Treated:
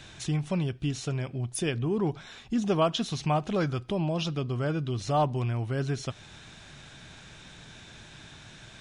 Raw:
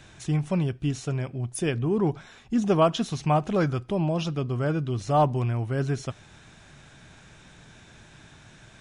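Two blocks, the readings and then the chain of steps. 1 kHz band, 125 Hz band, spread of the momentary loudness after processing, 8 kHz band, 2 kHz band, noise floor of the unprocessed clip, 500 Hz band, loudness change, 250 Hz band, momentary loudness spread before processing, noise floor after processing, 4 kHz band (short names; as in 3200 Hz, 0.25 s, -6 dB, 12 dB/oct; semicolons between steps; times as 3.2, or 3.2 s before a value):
-4.0 dB, -3.0 dB, 20 LU, 0.0 dB, -1.5 dB, -52 dBFS, -4.0 dB, -3.5 dB, -3.5 dB, 8 LU, -50 dBFS, +2.0 dB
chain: bell 3800 Hz +6 dB 1.2 oct; in parallel at +2.5 dB: compressor, threshold -32 dBFS, peak gain reduction 15.5 dB; on the sum: gain -6.5 dB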